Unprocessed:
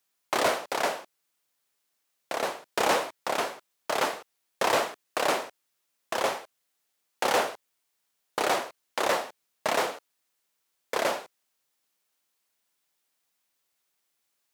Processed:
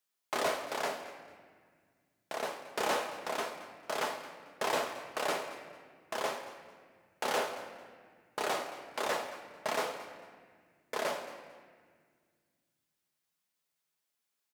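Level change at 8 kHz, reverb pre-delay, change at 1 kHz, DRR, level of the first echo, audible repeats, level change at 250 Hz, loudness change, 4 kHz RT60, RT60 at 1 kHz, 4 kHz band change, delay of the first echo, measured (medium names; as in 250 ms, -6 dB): -7.0 dB, 5 ms, -7.0 dB, 5.0 dB, -16.5 dB, 2, -7.0 dB, -7.0 dB, 1.3 s, 1.6 s, -7.0 dB, 223 ms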